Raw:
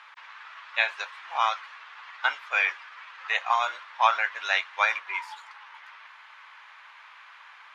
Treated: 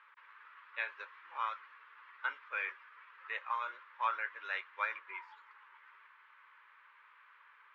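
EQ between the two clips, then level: Bessel low-pass 910 Hz, order 2; bell 220 Hz -6 dB 2.1 oct; fixed phaser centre 300 Hz, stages 4; 0.0 dB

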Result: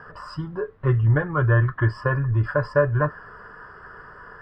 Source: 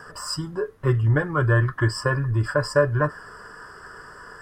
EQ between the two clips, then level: air absorption 370 m; bell 310 Hz -4 dB 1.1 oct; +2.0 dB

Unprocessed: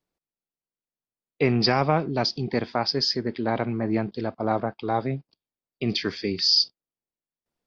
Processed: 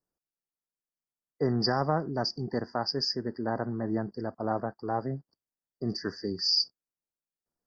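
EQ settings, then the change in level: brick-wall FIR band-stop 2000–4500 Hz; notch 1900 Hz, Q 16; -5.5 dB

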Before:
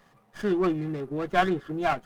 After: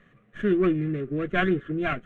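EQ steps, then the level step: air absorption 130 m; fixed phaser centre 2100 Hz, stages 4; +5.0 dB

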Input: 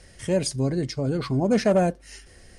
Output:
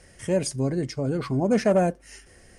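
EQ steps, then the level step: low shelf 81 Hz -6.5 dB; bell 4000 Hz -7 dB 0.69 oct; 0.0 dB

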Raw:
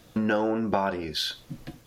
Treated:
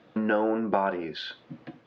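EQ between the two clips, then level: BPF 210–2600 Hz; air absorption 81 m; +1.0 dB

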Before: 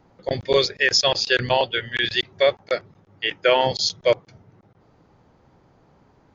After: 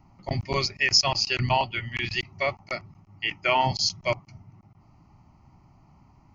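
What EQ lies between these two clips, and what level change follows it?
low shelf 180 Hz +6 dB; fixed phaser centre 2400 Hz, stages 8; 0.0 dB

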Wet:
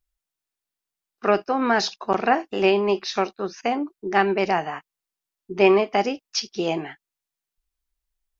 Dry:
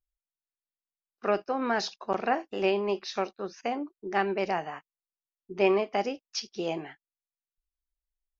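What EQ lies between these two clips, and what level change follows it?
bell 550 Hz -4 dB 0.32 oct; +8.0 dB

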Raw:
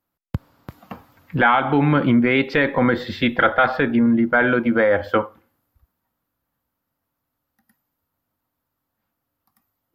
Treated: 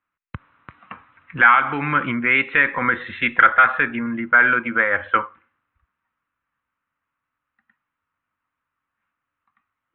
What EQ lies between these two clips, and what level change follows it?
brick-wall FIR low-pass 4100 Hz; band shelf 1700 Hz +15 dB; -9.5 dB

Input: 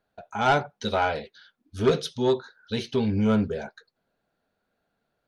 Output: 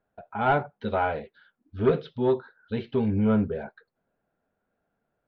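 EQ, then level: Gaussian blur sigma 2.6 samples; air absorption 200 m; 0.0 dB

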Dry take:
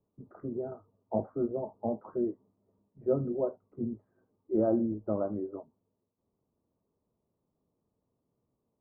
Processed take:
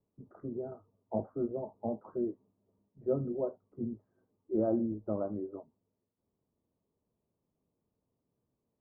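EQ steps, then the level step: air absorption 420 m; -2.0 dB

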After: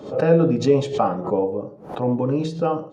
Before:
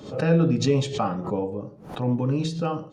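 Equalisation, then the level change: bell 570 Hz +12 dB 2.8 oct; -4.5 dB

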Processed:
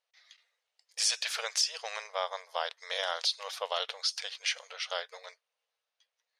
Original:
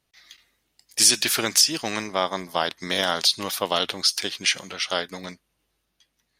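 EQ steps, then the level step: brick-wall FIR high-pass 440 Hz; LPF 6700 Hz 12 dB/oct; -9.0 dB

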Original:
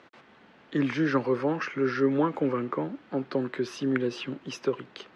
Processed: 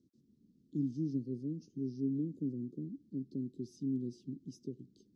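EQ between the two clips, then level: inverse Chebyshev band-stop 720–2300 Hz, stop band 60 dB; high shelf 2700 Hz -9.5 dB; -5.5 dB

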